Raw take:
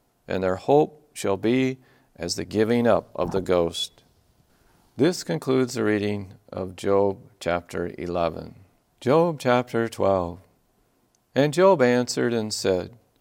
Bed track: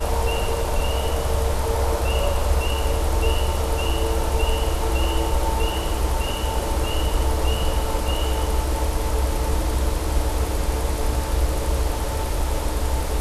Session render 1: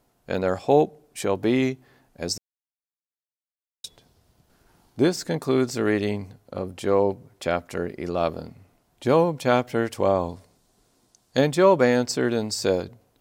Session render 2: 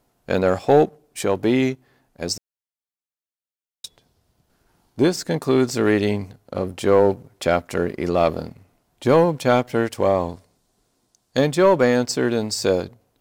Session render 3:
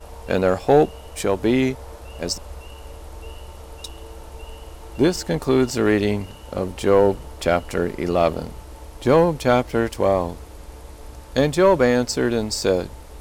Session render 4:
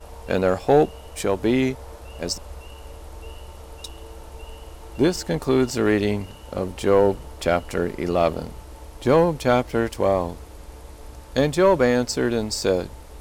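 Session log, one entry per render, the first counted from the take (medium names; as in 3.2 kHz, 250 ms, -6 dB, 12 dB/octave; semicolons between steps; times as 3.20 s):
2.38–3.84 s: mute; 10.29–11.39 s: high-order bell 5.8 kHz +8 dB
gain riding within 4 dB 2 s; waveshaping leveller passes 1
add bed track -16.5 dB
trim -1.5 dB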